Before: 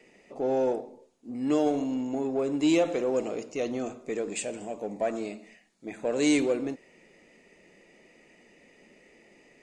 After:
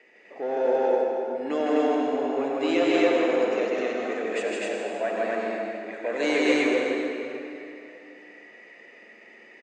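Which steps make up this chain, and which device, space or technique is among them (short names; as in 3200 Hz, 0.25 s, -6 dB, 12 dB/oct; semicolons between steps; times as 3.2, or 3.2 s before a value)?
station announcement (BPF 390–4000 Hz; bell 1700 Hz +7.5 dB 0.57 oct; loudspeakers at several distances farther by 54 m -2 dB, 72 m -11 dB, 87 m 0 dB; reverb RT60 2.9 s, pre-delay 73 ms, DRR 0.5 dB)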